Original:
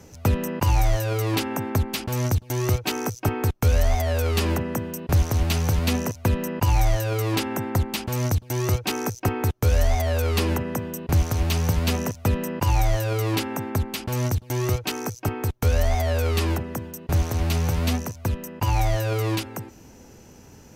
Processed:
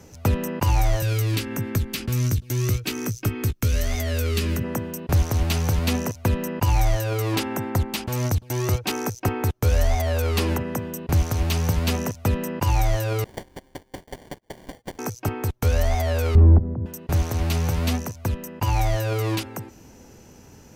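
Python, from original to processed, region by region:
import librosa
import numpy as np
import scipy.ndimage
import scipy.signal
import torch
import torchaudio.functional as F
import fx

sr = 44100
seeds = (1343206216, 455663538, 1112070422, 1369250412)

y = fx.chain(x, sr, fx.peak_eq(hz=810.0, db=-15.0, octaves=1.1),
    fx.doubler(ms=17.0, db=-10.5),
    fx.band_squash(depth_pct=70), at=(1.02, 4.64))
y = fx.chain(y, sr, fx.differentiator(),
    fx.fixed_phaser(hz=1300.0, stages=8),
    fx.sample_hold(seeds[0], rate_hz=1300.0, jitter_pct=0), at=(13.24, 14.99))
y = fx.chain(y, sr, fx.lowpass(hz=1000.0, slope=12),
    fx.level_steps(step_db=13),
    fx.tilt_eq(slope=-4.5), at=(16.35, 16.86))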